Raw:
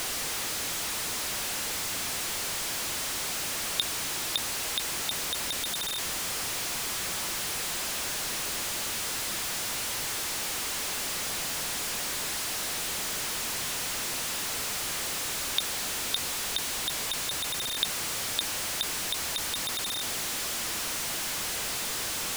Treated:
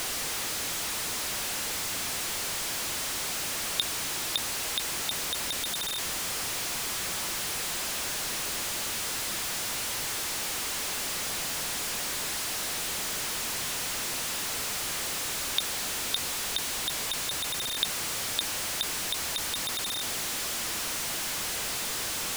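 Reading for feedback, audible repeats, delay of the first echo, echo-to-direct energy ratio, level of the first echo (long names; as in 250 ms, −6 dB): no echo audible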